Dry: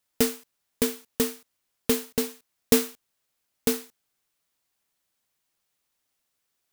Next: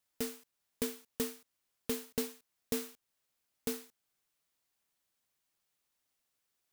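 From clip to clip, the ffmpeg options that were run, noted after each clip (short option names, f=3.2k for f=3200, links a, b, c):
-af "alimiter=limit=-16dB:level=0:latency=1:release=428,volume=-4.5dB"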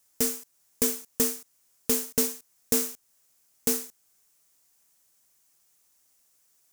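-filter_complex "[0:a]highshelf=f=4.9k:t=q:w=1.5:g=7,asplit=2[a][b];[b]aeval=exprs='0.0316*(abs(mod(val(0)/0.0316+3,4)-2)-1)':c=same,volume=-8dB[c];[a][c]amix=inputs=2:normalize=0,volume=6.5dB"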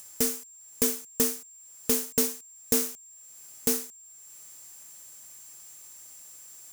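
-af "acompressor=mode=upward:threshold=-37dB:ratio=2.5,aeval=exprs='val(0)+0.00398*sin(2*PI*7400*n/s)':c=same"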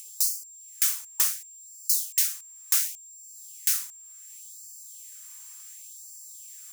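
-af "afftfilt=real='re*gte(b*sr/1024,800*pow(4300/800,0.5+0.5*sin(2*PI*0.69*pts/sr)))':imag='im*gte(b*sr/1024,800*pow(4300/800,0.5+0.5*sin(2*PI*0.69*pts/sr)))':win_size=1024:overlap=0.75,volume=3dB"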